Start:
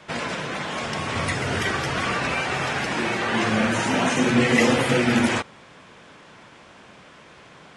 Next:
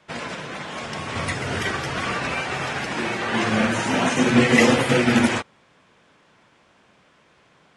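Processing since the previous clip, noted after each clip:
expander for the loud parts 1.5 to 1, over −42 dBFS
level +3.5 dB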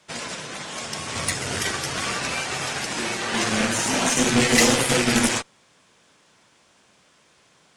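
tube saturation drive 13 dB, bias 0.75
bass and treble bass −1 dB, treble +14 dB
level +1.5 dB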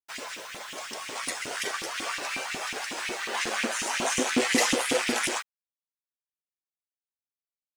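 auto-filter high-pass saw up 5.5 Hz 240–2,800 Hz
bit reduction 7 bits
level −7.5 dB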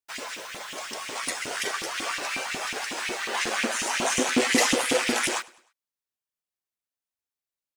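repeating echo 102 ms, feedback 43%, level −23 dB
level +2 dB

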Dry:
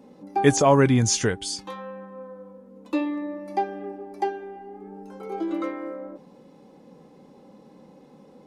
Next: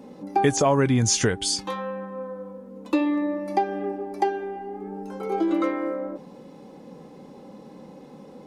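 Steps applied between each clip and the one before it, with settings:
downward compressor 4 to 1, threshold −24 dBFS, peak gain reduction 11 dB
level +6 dB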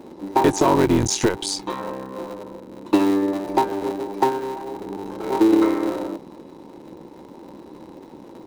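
sub-harmonics by changed cycles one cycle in 3, muted
hollow resonant body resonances 340/920/3,900 Hz, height 12 dB, ringing for 35 ms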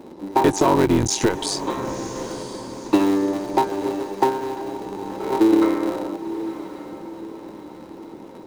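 feedback delay with all-pass diffusion 997 ms, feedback 46%, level −12.5 dB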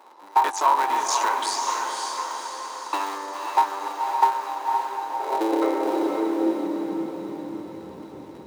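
high-pass filter sweep 990 Hz → 70 Hz, 0:04.79–0:08.11
feedback delay with all-pass diffusion 542 ms, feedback 41%, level −3.5 dB
level −4 dB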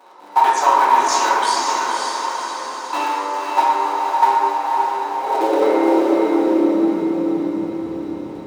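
convolution reverb RT60 2.1 s, pre-delay 4 ms, DRR −6 dB

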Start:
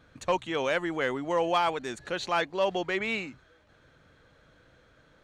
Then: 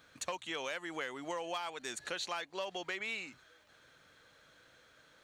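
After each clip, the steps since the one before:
spectral tilt +3 dB per octave
downward compressor 10 to 1, threshold −33 dBFS, peak gain reduction 13 dB
level −2.5 dB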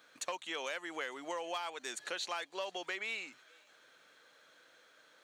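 high-pass filter 310 Hz 12 dB per octave
delay with a high-pass on its return 453 ms, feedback 35%, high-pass 4,100 Hz, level −19 dB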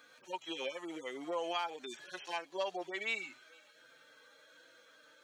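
harmonic-percussive split with one part muted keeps harmonic
level +4.5 dB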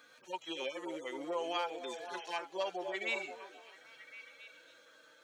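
echo through a band-pass that steps 266 ms, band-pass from 440 Hz, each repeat 0.7 octaves, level −4.5 dB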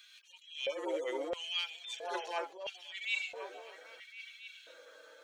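auto-filter high-pass square 0.75 Hz 470–2,900 Hz
level that may rise only so fast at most 110 dB per second
level +2.5 dB

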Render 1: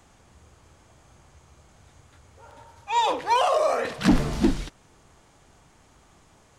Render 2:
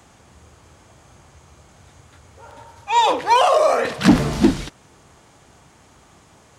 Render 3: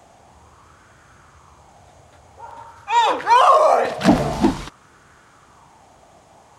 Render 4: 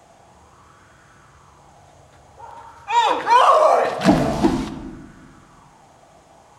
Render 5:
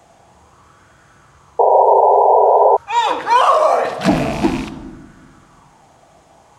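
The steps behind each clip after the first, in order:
high-pass filter 63 Hz; level +6.5 dB
auto-filter bell 0.49 Hz 670–1,500 Hz +12 dB; level −3 dB
convolution reverb RT60 1.4 s, pre-delay 6 ms, DRR 7.5 dB; level −1 dB
loose part that buzzes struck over −26 dBFS, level −19 dBFS; sound drawn into the spectrogram noise, 0:01.59–0:02.77, 390–1,000 Hz −9 dBFS; boost into a limiter +2 dB; level −1 dB

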